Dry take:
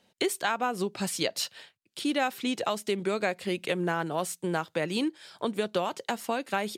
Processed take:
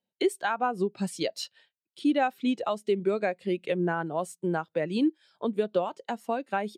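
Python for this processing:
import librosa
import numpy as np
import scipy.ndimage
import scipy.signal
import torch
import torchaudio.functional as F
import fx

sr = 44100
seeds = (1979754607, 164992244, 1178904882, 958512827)

y = fx.spectral_expand(x, sr, expansion=1.5)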